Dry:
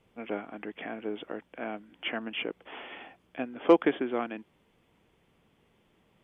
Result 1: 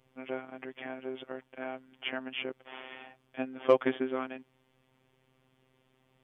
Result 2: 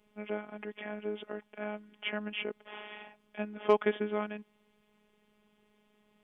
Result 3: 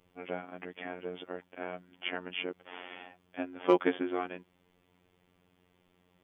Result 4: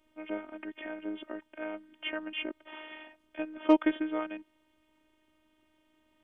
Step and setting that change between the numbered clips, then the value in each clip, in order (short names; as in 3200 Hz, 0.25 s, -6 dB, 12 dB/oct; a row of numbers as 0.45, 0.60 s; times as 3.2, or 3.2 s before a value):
robotiser, frequency: 130, 210, 90, 310 Hz